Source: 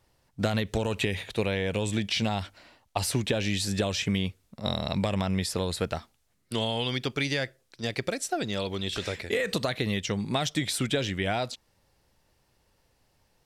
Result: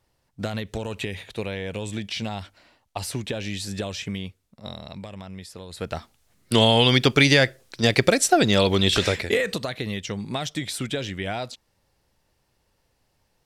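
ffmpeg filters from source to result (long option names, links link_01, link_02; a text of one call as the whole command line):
ffmpeg -i in.wav -af "volume=20.5dB,afade=type=out:start_time=3.86:duration=1.21:silence=0.375837,afade=type=in:start_time=5.69:duration=0.24:silence=0.251189,afade=type=in:start_time=5.93:duration=0.73:silence=0.281838,afade=type=out:start_time=8.91:duration=0.67:silence=0.223872" out.wav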